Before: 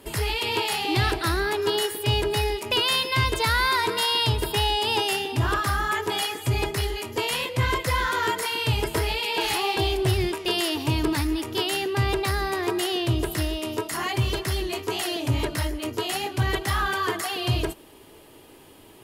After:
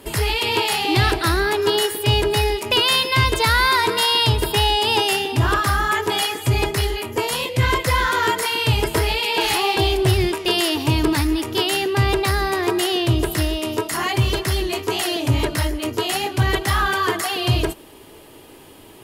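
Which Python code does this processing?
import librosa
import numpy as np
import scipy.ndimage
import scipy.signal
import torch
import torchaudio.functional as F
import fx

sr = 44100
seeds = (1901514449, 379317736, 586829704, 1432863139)

y = fx.peak_eq(x, sr, hz=fx.line((6.95, 8300.0), (7.62, 950.0)), db=-8.0, octaves=0.77, at=(6.95, 7.62), fade=0.02)
y = y * librosa.db_to_amplitude(5.5)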